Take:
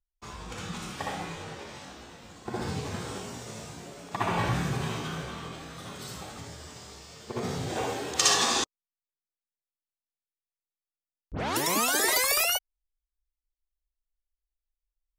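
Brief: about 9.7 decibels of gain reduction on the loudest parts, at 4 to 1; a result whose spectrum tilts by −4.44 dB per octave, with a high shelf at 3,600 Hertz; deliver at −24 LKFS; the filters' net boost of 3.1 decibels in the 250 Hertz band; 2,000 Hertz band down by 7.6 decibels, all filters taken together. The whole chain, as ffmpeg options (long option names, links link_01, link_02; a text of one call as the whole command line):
ffmpeg -i in.wav -af "equalizer=frequency=250:width_type=o:gain=4.5,equalizer=frequency=2000:width_type=o:gain=-8.5,highshelf=frequency=3600:gain=-5,acompressor=threshold=-35dB:ratio=4,volume=15.5dB" out.wav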